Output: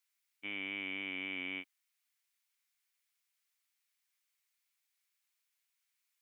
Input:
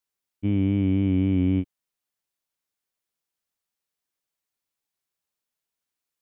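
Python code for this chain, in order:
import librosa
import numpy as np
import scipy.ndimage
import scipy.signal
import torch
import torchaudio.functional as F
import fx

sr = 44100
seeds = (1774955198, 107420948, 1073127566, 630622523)

y = scipy.signal.sosfilt(scipy.signal.butter(2, 1400.0, 'highpass', fs=sr, output='sos'), x)
y = fx.peak_eq(y, sr, hz=2200.0, db=6.0, octaves=0.39)
y = F.gain(torch.from_numpy(y), 3.0).numpy()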